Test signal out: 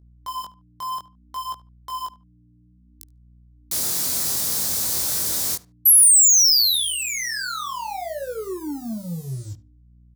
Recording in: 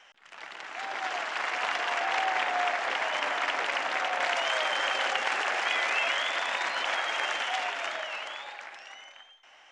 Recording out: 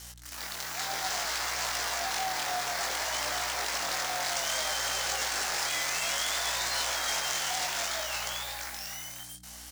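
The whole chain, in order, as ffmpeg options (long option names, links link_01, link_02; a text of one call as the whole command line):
ffmpeg -i in.wav -filter_complex "[0:a]highpass=100,alimiter=limit=-23.5dB:level=0:latency=1:release=72,asoftclip=type=tanh:threshold=-29.5dB,acrusher=bits=8:mix=0:aa=0.5,aeval=exprs='val(0)+0.00224*(sin(2*PI*60*n/s)+sin(2*PI*2*60*n/s)/2+sin(2*PI*3*60*n/s)/3+sin(2*PI*4*60*n/s)/4+sin(2*PI*5*60*n/s)/5)':channel_layout=same,asplit=2[link_01][link_02];[link_02]adelay=73,lowpass=frequency=2400:poles=1,volume=-17.5dB,asplit=2[link_03][link_04];[link_04]adelay=73,lowpass=frequency=2400:poles=1,volume=0.23[link_05];[link_03][link_05]amix=inputs=2:normalize=0[link_06];[link_01][link_06]amix=inputs=2:normalize=0,flanger=delay=18:depth=5.5:speed=0.6,aexciter=amount=6.8:drive=4:freq=4000,volume=4.5dB" out.wav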